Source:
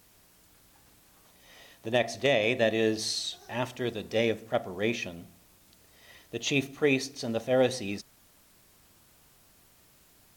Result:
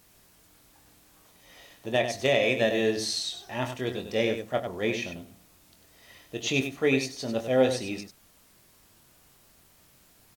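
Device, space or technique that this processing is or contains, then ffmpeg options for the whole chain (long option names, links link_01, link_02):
slapback doubling: -filter_complex "[0:a]asettb=1/sr,asplit=3[link_01][link_02][link_03];[link_01]atrim=end=2.104[link_04];[link_02]atrim=start=2.1:end=2.81,asetpts=PTS-STARTPTS,afade=type=in:duration=0.004:curve=qsin,afade=type=out:start_time=0.706:duration=0.004:curve=qsin,highshelf=frequency=8500:gain=5[link_05];[link_03]atrim=start=2.806[link_06];[link_04][link_05]acrossfade=duration=0.004:curve1=hsin:curve2=qsin[link_07];[link_07][link_06]acrossfade=duration=0.004:curve1=qsin:curve2=hsin,asplit=3[link_08][link_09][link_10];[link_09]adelay=23,volume=-8dB[link_11];[link_10]adelay=97,volume=-8.5dB[link_12];[link_08][link_11][link_12]amix=inputs=3:normalize=0"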